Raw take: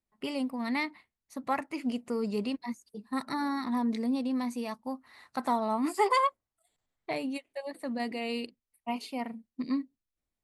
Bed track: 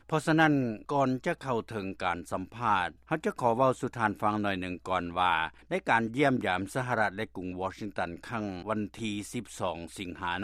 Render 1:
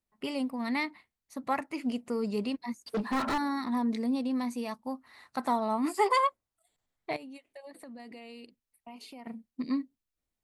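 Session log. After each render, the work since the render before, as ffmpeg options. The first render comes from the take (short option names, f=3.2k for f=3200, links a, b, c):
-filter_complex "[0:a]asettb=1/sr,asplit=3[a][b][c];[a]atrim=end=2.864[d];[b]atrim=start=2.86:end=3.38,asetpts=PTS-STARTPTS,afade=t=in:d=0.004:c=qsin,afade=t=out:st=0.516:d=0.004:c=qsin,asplit=2[e][f];[f]highpass=f=720:p=1,volume=37dB,asoftclip=type=tanh:threshold=-21.5dB[g];[e][g]amix=inputs=2:normalize=0,lowpass=f=1.6k:p=1,volume=-6dB[h];[c]atrim=start=3.376[i];[d][h]acrossfade=d=0.004:c1=hsin:c2=qsin[j];[j][i]acrossfade=d=0.004:c1=qsin:c2=hsin,asettb=1/sr,asplit=3[k][l][m];[k]atrim=end=7.164[n];[l]atrim=start=7.16:end=9.27,asetpts=PTS-STARTPTS,afade=t=in:d=0.004:c=qsin,afade=t=out:st=2.106:d=0.004:c=qsin,acompressor=threshold=-44dB:ratio=6:attack=3.2:release=140:knee=1:detection=peak[o];[m]atrim=start=9.266[p];[n][o]acrossfade=d=0.004:c1=hsin:c2=qsin[q];[q][p]acrossfade=d=0.004:c1=qsin:c2=hsin"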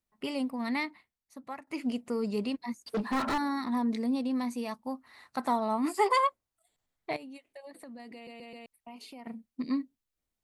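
-filter_complex "[0:a]asplit=6[a][b][c][d][e][f];[a]atrim=end=1.67,asetpts=PTS-STARTPTS,afade=t=out:st=0.67:d=1:silence=0.16788[g];[b]atrim=start=1.67:end=8.272,asetpts=PTS-STARTPTS,afade=t=in:d=0.004:c=hsin:silence=0.16788[h];[c]atrim=start=8.138:end=8.272[i];[d]atrim=start=8.138:end=8.272[j];[e]atrim=start=8.138:end=8.272[k];[f]atrim=start=8.658[l];[g][h]concat=n=2:v=0:a=1[m];[m][i]acrossfade=d=0.004:c1=hsin:c2=hsin[n];[n][j]acrossfade=d=0.004:c1=hsin:c2=hsin[o];[o][k]acrossfade=d=0.004:c1=hsin:c2=hsin[p];[p][l]acrossfade=d=0.004:c1=hsin:c2=hsin"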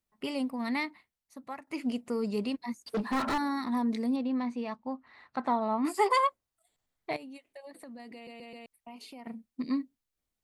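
-filter_complex "[0:a]asettb=1/sr,asplit=3[a][b][c];[a]atrim=end=4.164[d];[b]atrim=start=4.16:end=5.85,asetpts=PTS-STARTPTS,afade=t=in:d=0.004:c=qsin,afade=t=out:st=1.686:d=0.004:c=qsin,lowpass=3.2k[e];[c]atrim=start=5.846[f];[d][e]acrossfade=d=0.004:c1=hsin:c2=qsin[g];[g][f]acrossfade=d=0.004:c1=qsin:c2=hsin"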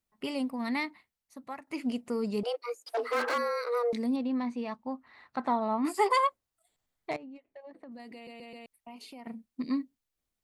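-filter_complex "[0:a]asettb=1/sr,asplit=3[a][b][c];[a]atrim=end=2.434[d];[b]atrim=start=2.43:end=3.93,asetpts=PTS-STARTPTS,afade=t=in:d=0.004:c=qsin,afade=t=out:st=1.496:d=0.004:c=qsin,afreqshift=240[e];[c]atrim=start=3.926[f];[d][e]acrossfade=d=0.004:c1=hsin:c2=qsin[g];[g][f]acrossfade=d=0.004:c1=qsin:c2=hsin,asettb=1/sr,asplit=3[h][i][j];[h]atrim=end=7.114[k];[i]atrim=start=7.11:end=7.92,asetpts=PTS-STARTPTS,afade=t=in:d=0.004:c=qsin,afade=t=out:st=0.806:d=0.004:c=qsin,adynamicsmooth=sensitivity=4.5:basefreq=1.6k[l];[j]atrim=start=7.916[m];[k][l]acrossfade=d=0.004:c1=hsin:c2=qsin[n];[n][m]acrossfade=d=0.004:c1=qsin:c2=hsin"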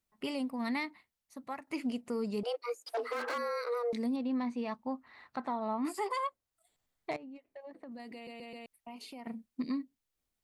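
-af "alimiter=level_in=2.5dB:limit=-24dB:level=0:latency=1:release=380,volume=-2.5dB"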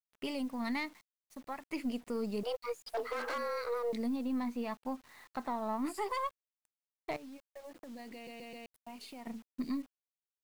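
-af "aeval=exprs='if(lt(val(0),0),0.708*val(0),val(0))':c=same,acrusher=bits=9:mix=0:aa=0.000001"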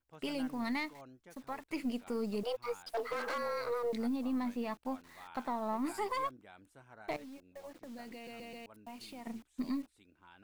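-filter_complex "[1:a]volume=-27dB[a];[0:a][a]amix=inputs=2:normalize=0"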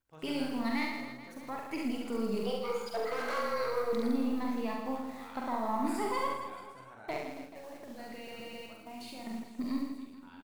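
-filter_complex "[0:a]asplit=2[a][b];[b]adelay=45,volume=-4.5dB[c];[a][c]amix=inputs=2:normalize=0,aecho=1:1:70|161|279.3|433.1|633:0.631|0.398|0.251|0.158|0.1"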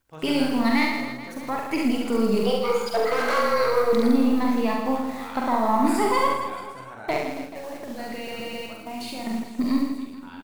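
-af "volume=11.5dB"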